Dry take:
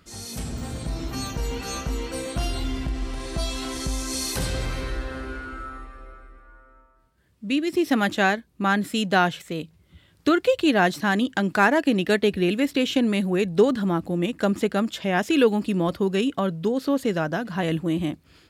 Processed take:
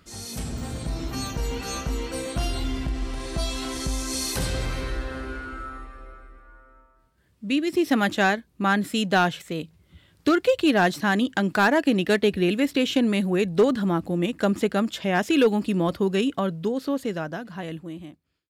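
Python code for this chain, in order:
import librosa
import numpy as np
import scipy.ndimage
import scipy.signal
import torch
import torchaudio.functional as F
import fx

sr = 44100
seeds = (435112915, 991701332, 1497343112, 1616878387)

y = fx.fade_out_tail(x, sr, length_s=2.3)
y = np.clip(10.0 ** (12.0 / 20.0) * y, -1.0, 1.0) / 10.0 ** (12.0 / 20.0)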